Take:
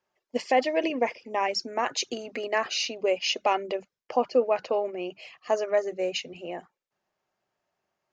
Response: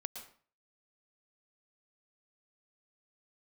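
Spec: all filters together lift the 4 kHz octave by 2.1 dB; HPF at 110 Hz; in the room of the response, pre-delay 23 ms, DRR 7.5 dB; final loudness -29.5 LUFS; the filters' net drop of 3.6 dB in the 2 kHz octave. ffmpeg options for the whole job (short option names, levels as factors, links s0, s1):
-filter_complex "[0:a]highpass=110,equalizer=f=2000:t=o:g=-6.5,equalizer=f=4000:t=o:g=5.5,asplit=2[s0][s1];[1:a]atrim=start_sample=2205,adelay=23[s2];[s1][s2]afir=irnorm=-1:irlink=0,volume=0.531[s3];[s0][s3]amix=inputs=2:normalize=0,volume=0.794"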